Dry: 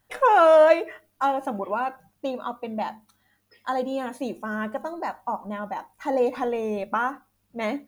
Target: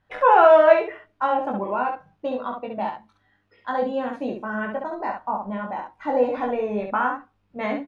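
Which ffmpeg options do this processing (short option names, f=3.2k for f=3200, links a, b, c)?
-af "lowpass=2.8k,aecho=1:1:20|67:0.668|0.596"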